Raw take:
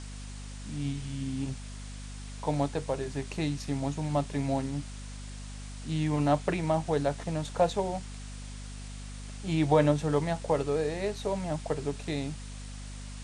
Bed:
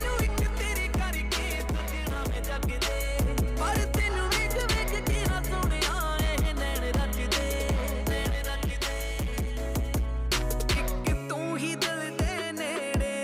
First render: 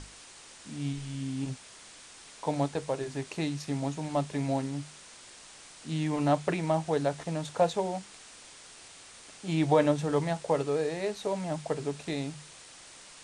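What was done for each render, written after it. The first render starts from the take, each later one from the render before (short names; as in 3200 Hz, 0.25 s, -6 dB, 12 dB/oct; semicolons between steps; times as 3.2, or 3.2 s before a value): notches 50/100/150/200/250 Hz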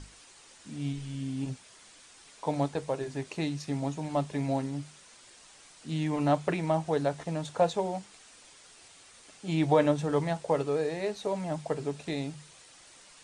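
denoiser 6 dB, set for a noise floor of -51 dBFS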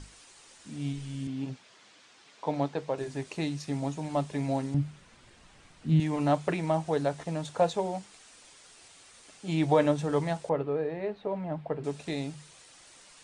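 1.27–2.98 BPF 130–4800 Hz; 4.74–6 tone controls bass +13 dB, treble -11 dB; 10.49–11.84 air absorption 470 m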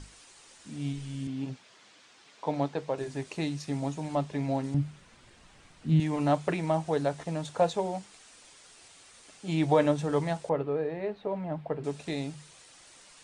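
4.15–4.64 air absorption 55 m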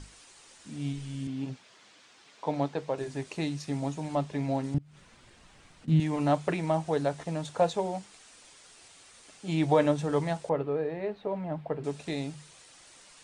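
4.78–5.88 compressor 10:1, threshold -48 dBFS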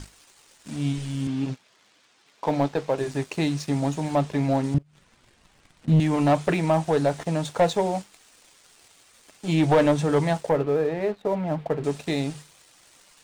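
sample leveller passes 2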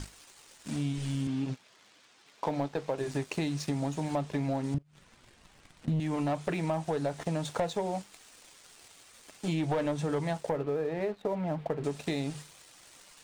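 compressor 5:1, threshold -29 dBFS, peak gain reduction 12.5 dB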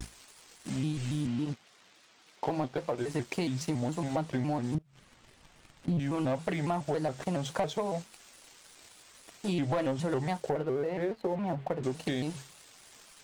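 shaped vibrato square 3.6 Hz, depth 160 cents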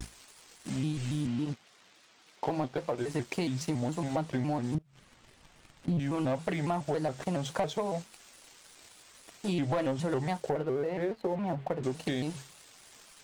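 nothing audible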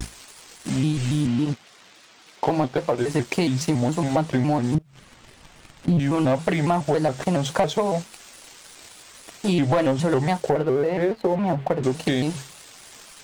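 gain +10 dB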